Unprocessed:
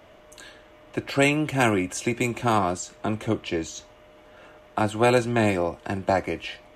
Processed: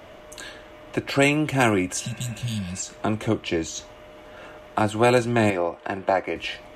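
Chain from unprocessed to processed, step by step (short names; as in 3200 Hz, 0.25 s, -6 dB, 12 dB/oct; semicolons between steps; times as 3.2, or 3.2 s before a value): 5.5–6.36 tone controls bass -12 dB, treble -11 dB; in parallel at +1 dB: compressor, threshold -35 dBFS, peak gain reduction 19 dB; 2.04–2.79 on the sum: spectral repair 230–2700 Hz before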